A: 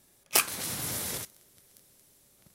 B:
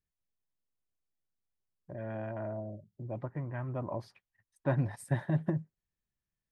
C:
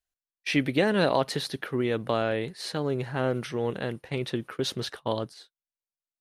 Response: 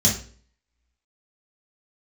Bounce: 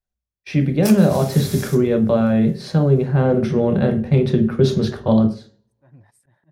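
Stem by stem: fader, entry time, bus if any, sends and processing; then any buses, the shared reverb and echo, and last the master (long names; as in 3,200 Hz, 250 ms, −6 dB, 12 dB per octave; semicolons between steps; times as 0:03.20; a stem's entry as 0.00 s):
+2.0 dB, 0.50 s, send −23 dB, soft clipping −7.5 dBFS, distortion −20 dB; automatic ducking −7 dB, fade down 1.90 s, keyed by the third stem
−12.5 dB, 1.15 s, no send, volume swells 317 ms
+2.0 dB, 0.00 s, send −18 dB, tilt shelving filter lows +8.5 dB, about 1,300 Hz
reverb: on, RT60 0.45 s, pre-delay 3 ms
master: speech leveller within 4 dB 0.5 s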